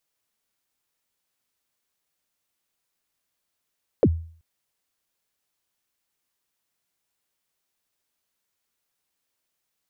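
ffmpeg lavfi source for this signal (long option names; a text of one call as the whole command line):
ffmpeg -f lavfi -i "aevalsrc='0.299*pow(10,-3*t/0.48)*sin(2*PI*(590*0.053/log(82/590)*(exp(log(82/590)*min(t,0.053)/0.053)-1)+82*max(t-0.053,0)))':duration=0.38:sample_rate=44100" out.wav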